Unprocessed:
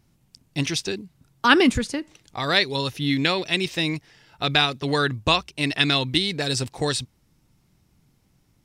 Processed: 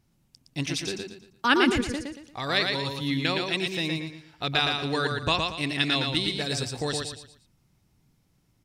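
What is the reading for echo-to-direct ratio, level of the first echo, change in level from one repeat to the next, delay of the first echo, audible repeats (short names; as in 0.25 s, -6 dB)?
-3.5 dB, -4.0 dB, -9.5 dB, 0.115 s, 4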